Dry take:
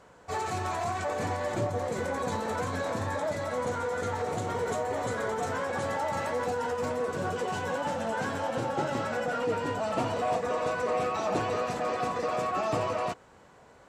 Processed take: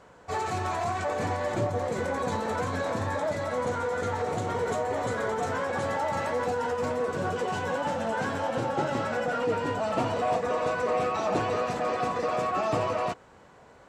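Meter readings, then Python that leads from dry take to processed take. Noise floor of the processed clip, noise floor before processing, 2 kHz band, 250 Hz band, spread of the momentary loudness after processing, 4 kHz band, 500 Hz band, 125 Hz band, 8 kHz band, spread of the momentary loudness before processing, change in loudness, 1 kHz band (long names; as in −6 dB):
−54 dBFS, −56 dBFS, +2.0 dB, +2.0 dB, 3 LU, +1.0 dB, +2.0 dB, +2.0 dB, −0.5 dB, 3 LU, +2.0 dB, +2.0 dB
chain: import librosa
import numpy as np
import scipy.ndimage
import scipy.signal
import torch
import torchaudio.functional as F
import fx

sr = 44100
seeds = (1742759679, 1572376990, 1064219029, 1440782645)

y = fx.high_shelf(x, sr, hz=7600.0, db=-6.0)
y = y * 10.0 ** (2.0 / 20.0)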